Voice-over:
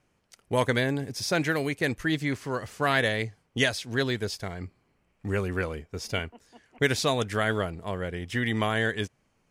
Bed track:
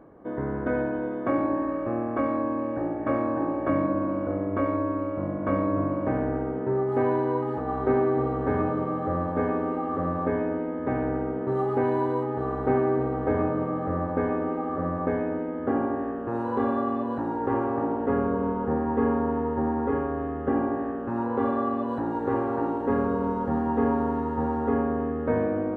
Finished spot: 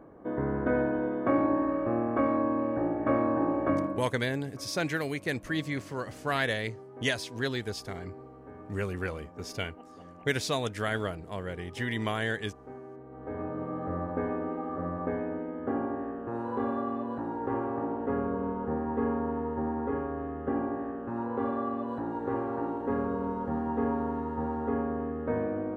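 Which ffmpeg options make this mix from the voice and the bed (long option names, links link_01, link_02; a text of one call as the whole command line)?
ffmpeg -i stem1.wav -i stem2.wav -filter_complex "[0:a]adelay=3450,volume=-4.5dB[link_01];[1:a]volume=16dB,afade=type=out:start_time=3.61:duration=0.48:silence=0.0841395,afade=type=in:start_time=13.06:duration=0.78:silence=0.149624[link_02];[link_01][link_02]amix=inputs=2:normalize=0" out.wav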